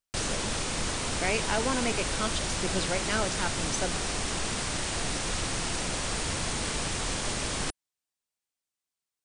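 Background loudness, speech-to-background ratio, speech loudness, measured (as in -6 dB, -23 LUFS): -30.5 LUFS, -2.5 dB, -33.0 LUFS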